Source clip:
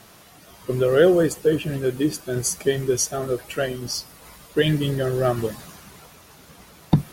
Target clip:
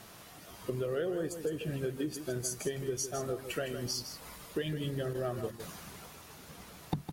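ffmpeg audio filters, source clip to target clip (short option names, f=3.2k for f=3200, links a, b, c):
-filter_complex "[0:a]asettb=1/sr,asplit=3[a][b][c];[a]atrim=end=5.134[d];[b]atrim=start=5.13:end=5.6,asetpts=PTS-STARTPTS,afade=t=in:d=0.004:c=qsin,afade=t=out:st=0.466:d=0.004:c=qsin,agate=range=-9dB:threshold=-25dB:ratio=16:detection=peak[e];[c]atrim=start=5.596[f];[d][e]acrossfade=d=0.004:c1=hsin:c2=qsin[g];[g][f]acrossfade=d=0.004:c1=qsin:c2=hsin,acompressor=threshold=-29dB:ratio=6,asplit=2[h][i];[i]aecho=0:1:159:0.335[j];[h][j]amix=inputs=2:normalize=0,volume=-3.5dB"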